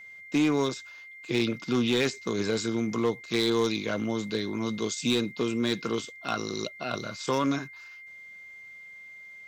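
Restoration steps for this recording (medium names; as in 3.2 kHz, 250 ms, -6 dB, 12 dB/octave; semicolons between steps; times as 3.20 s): clip repair -18.5 dBFS; band-stop 2.1 kHz, Q 30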